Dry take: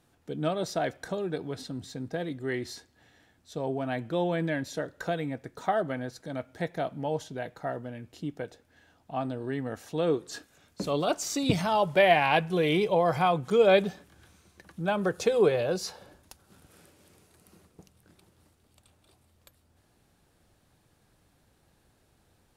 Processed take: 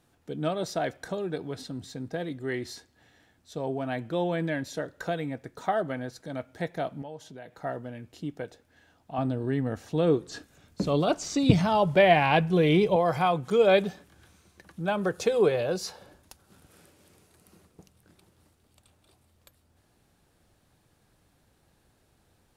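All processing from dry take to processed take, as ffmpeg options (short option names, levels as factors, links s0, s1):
-filter_complex "[0:a]asettb=1/sr,asplit=3[s0][s1][s2];[s0]atrim=end=7.024[s3];[s1]atrim=start=7.02:end=7.58,asetpts=PTS-STARTPTS,afade=t=in:d=0.004:c=qsin,afade=t=out:st=0.556:d=0.004:c=qsin,highpass=100,acompressor=threshold=0.00501:ratio=2:attack=3.2:release=140:knee=1:detection=peak[s4];[s2]atrim=start=7.576[s5];[s3][s4]acrossfade=d=0.004:c1=hsin:c2=qsin[s6];[s6][s5]acrossfade=d=0.004:c1=qsin:c2=hsin,asettb=1/sr,asplit=3[s7][s8][s9];[s7]atrim=end=9.184[s10];[s8]atrim=start=9.18:end=12.96,asetpts=PTS-STARTPTS,afade=t=in:d=0.004:c=qsin,afade=t=out:st=3.776:d=0.004:c=qsin,lowshelf=f=290:g=9,acrossover=split=7600[s11][s12];[s12]acompressor=threshold=0.001:ratio=4:attack=1:release=60[s13];[s11][s13]amix=inputs=2:normalize=0[s14];[s9]atrim=start=12.956[s15];[s10][s14]acrossfade=d=0.004:c1=hsin:c2=qsin[s16];[s16][s15]acrossfade=d=0.004:c1=qsin:c2=hsin"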